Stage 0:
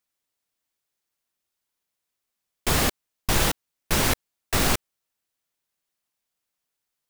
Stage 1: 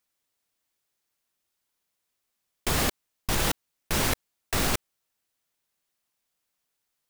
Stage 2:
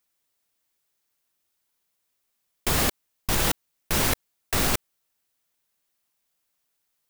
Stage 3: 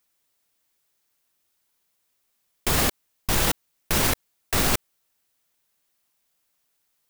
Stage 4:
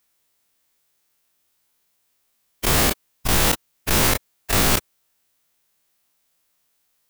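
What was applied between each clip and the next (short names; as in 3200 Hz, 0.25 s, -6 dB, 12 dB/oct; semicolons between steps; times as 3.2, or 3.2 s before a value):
level quantiser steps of 14 dB; gain +3.5 dB
high shelf 12000 Hz +5 dB; gain +1.5 dB
limiter -14.5 dBFS, peak gain reduction 4.5 dB; gain +3.5 dB
spectral dilation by 60 ms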